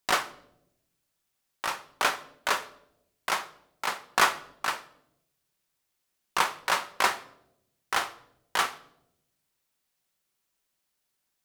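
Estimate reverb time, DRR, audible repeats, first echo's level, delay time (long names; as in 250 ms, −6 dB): 0.80 s, 11.0 dB, no echo audible, no echo audible, no echo audible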